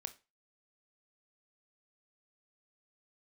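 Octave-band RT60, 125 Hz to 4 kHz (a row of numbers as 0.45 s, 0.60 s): 0.30 s, 0.25 s, 0.30 s, 0.30 s, 0.30 s, 0.25 s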